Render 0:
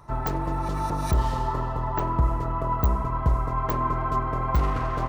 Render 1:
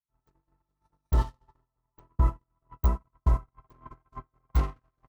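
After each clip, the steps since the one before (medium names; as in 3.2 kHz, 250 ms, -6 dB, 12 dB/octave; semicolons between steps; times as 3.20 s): gate -20 dBFS, range -55 dB; peaking EQ 810 Hz -3.5 dB 2.3 oct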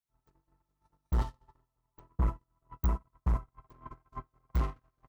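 saturation -22.5 dBFS, distortion -11 dB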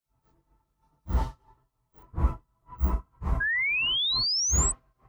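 phase randomisation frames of 100 ms; painted sound rise, 3.40–4.72 s, 1.6–8.2 kHz -30 dBFS; trim +3.5 dB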